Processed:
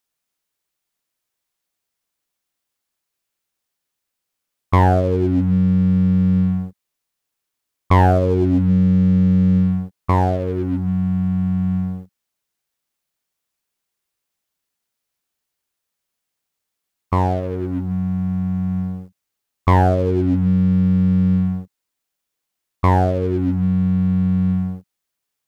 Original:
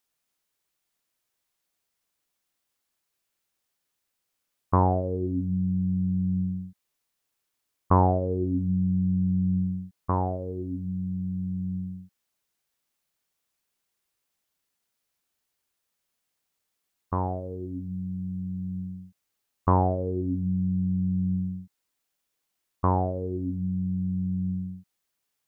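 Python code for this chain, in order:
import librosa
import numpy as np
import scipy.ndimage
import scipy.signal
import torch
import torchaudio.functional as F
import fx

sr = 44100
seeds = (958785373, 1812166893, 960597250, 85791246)

p1 = fx.leveller(x, sr, passes=2)
p2 = 10.0 ** (-16.5 / 20.0) * np.tanh(p1 / 10.0 ** (-16.5 / 20.0))
y = p1 + (p2 * librosa.db_to_amplitude(-4.5))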